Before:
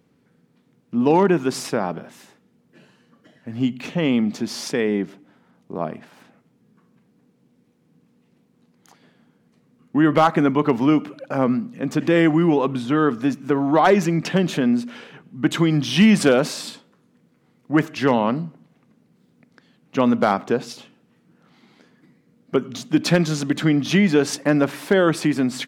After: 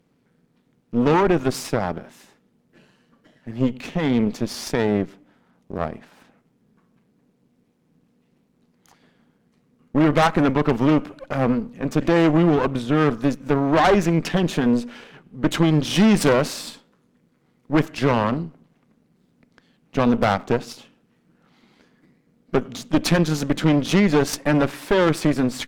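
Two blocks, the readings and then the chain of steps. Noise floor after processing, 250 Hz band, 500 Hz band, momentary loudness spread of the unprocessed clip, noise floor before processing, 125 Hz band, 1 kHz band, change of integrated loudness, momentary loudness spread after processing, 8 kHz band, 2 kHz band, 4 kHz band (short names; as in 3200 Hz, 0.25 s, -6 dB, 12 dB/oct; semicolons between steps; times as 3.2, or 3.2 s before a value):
-65 dBFS, -1.0 dB, -0.5 dB, 12 LU, -62 dBFS, +1.5 dB, -0.5 dB, -0.5 dB, 12 LU, -0.5 dB, -1.0 dB, -0.5 dB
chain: half-wave gain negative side -7 dB; added harmonics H 6 -16 dB, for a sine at -5.5 dBFS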